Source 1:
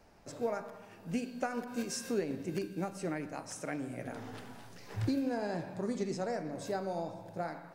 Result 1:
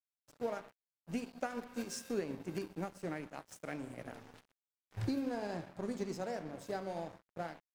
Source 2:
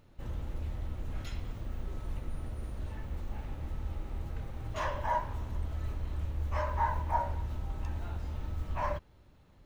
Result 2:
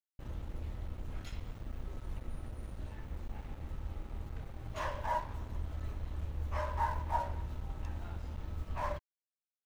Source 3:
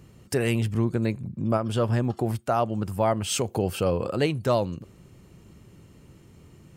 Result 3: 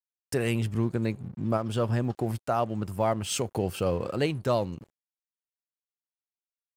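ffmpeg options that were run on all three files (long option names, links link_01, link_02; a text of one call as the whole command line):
ffmpeg -i in.wav -af "agate=range=-33dB:threshold=-41dB:ratio=3:detection=peak,aeval=exprs='sgn(val(0))*max(abs(val(0))-0.00398,0)':channel_layout=same,volume=-2.5dB" out.wav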